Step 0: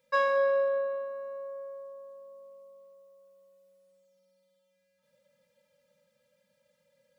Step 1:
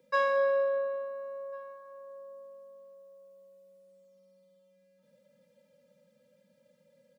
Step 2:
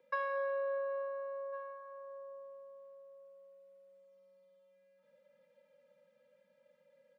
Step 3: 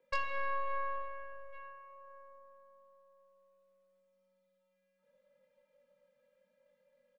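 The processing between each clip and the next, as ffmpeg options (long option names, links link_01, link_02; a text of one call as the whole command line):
ffmpeg -i in.wav -filter_complex "[0:a]acrossover=split=210|360|1600[link_01][link_02][link_03][link_04];[link_02]acompressor=mode=upward:threshold=-53dB:ratio=2.5[link_05];[link_01][link_05][link_03][link_04]amix=inputs=4:normalize=0,asplit=2[link_06][link_07];[link_07]adelay=1399,volume=-20dB,highshelf=frequency=4000:gain=-31.5[link_08];[link_06][link_08]amix=inputs=2:normalize=0,volume=-1dB" out.wav
ffmpeg -i in.wav -filter_complex "[0:a]acrossover=split=490 2900:gain=0.178 1 0.158[link_01][link_02][link_03];[link_01][link_02][link_03]amix=inputs=3:normalize=0,acompressor=threshold=-35dB:ratio=6,volume=1.5dB" out.wav
ffmpeg -i in.wav -filter_complex "[0:a]aeval=exprs='0.0668*(cos(1*acos(clip(val(0)/0.0668,-1,1)))-cos(1*PI/2))+0.0299*(cos(4*acos(clip(val(0)/0.0668,-1,1)))-cos(4*PI/2))+0.00188*(cos(7*acos(clip(val(0)/0.0668,-1,1)))-cos(7*PI/2))':channel_layout=same,asplit=2[link_01][link_02];[link_02]adelay=21,volume=-4dB[link_03];[link_01][link_03]amix=inputs=2:normalize=0,volume=-3dB" out.wav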